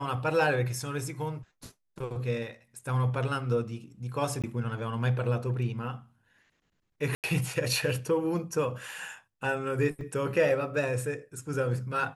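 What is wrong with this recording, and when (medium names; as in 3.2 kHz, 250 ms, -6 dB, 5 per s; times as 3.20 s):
4.42–4.44 s: dropout 17 ms
7.15–7.24 s: dropout 88 ms
10.01 s: dropout 2.6 ms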